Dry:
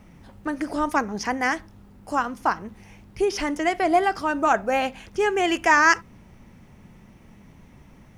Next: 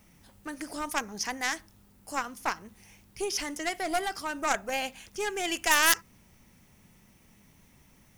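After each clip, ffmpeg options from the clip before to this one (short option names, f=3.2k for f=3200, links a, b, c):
-af "aeval=exprs='0.668*(cos(1*acos(clip(val(0)/0.668,-1,1)))-cos(1*PI/2))+0.188*(cos(6*acos(clip(val(0)/0.668,-1,1)))-cos(6*PI/2))+0.0944*(cos(8*acos(clip(val(0)/0.668,-1,1)))-cos(8*PI/2))':c=same,crystalizer=i=5:c=0,volume=-11.5dB"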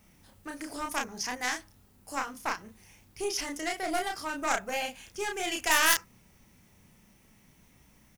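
-filter_complex "[0:a]asplit=2[a][b];[b]adelay=32,volume=-3.5dB[c];[a][c]amix=inputs=2:normalize=0,volume=-2.5dB"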